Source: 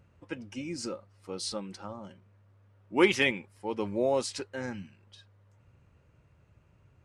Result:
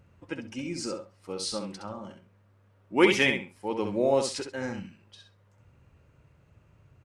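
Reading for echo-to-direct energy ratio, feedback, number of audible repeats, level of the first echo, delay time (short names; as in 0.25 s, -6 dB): -6.5 dB, 17%, 2, -6.5 dB, 66 ms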